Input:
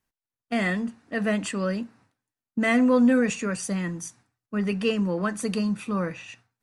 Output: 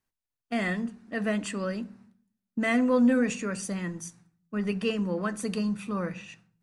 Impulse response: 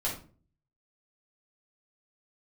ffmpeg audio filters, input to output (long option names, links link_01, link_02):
-filter_complex "[0:a]asplit=2[link_01][link_02];[1:a]atrim=start_sample=2205,asetrate=30429,aresample=44100,lowshelf=frequency=440:gain=8.5[link_03];[link_02][link_03]afir=irnorm=-1:irlink=0,volume=-27.5dB[link_04];[link_01][link_04]amix=inputs=2:normalize=0,volume=-4dB"